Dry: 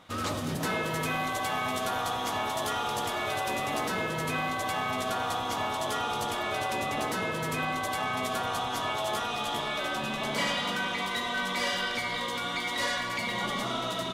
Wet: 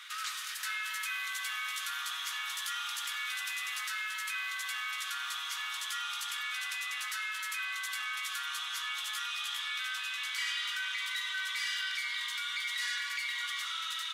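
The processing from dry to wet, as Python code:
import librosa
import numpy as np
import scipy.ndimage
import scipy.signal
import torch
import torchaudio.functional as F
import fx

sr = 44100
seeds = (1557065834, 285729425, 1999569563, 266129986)

y = scipy.signal.sosfilt(scipy.signal.butter(6, 1400.0, 'highpass', fs=sr, output='sos'), x)
y = fx.env_flatten(y, sr, amount_pct=50)
y = F.gain(torch.from_numpy(y), -4.0).numpy()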